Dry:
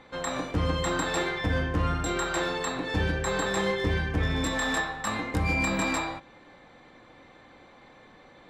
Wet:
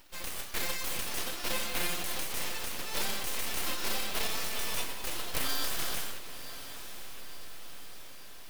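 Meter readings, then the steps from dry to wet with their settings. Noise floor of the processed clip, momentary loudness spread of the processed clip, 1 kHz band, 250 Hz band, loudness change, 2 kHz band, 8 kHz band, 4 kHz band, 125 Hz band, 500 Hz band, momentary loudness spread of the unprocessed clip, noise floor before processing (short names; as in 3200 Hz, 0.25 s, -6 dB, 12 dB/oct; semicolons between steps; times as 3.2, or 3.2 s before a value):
-43 dBFS, 15 LU, -9.5 dB, -15.5 dB, -6.0 dB, -8.0 dB, +1.5 dB, +0.5 dB, -19.0 dB, -12.0 dB, 5 LU, -54 dBFS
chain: spectral whitening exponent 0.3; inverse Chebyshev high-pass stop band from 180 Hz, stop band 60 dB; bell 5500 Hz -13.5 dB 1.1 oct; full-wave rectifier; diffused feedback echo 1.047 s, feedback 60%, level -12 dB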